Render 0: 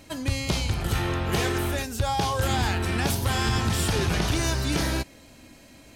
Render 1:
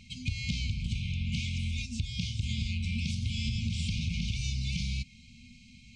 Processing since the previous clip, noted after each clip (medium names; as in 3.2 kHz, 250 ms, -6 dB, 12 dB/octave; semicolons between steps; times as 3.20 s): Bessel low-pass 4.7 kHz, order 8; FFT band-reject 250–2100 Hz; compression 4:1, threshold -29 dBFS, peak gain reduction 8.5 dB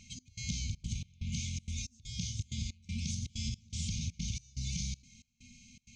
dynamic bell 2.6 kHz, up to -7 dB, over -56 dBFS, Q 2.9; trance gate "xx..xxxx." 161 bpm -24 dB; peaking EQ 6.4 kHz +14.5 dB 0.36 oct; trim -4.5 dB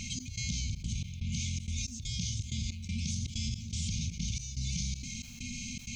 level flattener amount 70%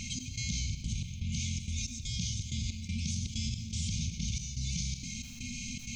reverberation RT60 0.95 s, pre-delay 60 ms, DRR 9 dB